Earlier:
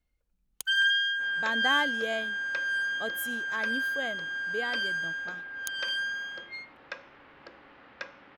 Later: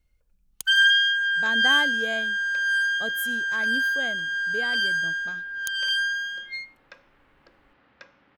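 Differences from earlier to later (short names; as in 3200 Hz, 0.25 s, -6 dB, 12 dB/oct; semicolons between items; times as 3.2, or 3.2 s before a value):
first sound +6.5 dB; second sound -8.5 dB; master: add tone controls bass +6 dB, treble +3 dB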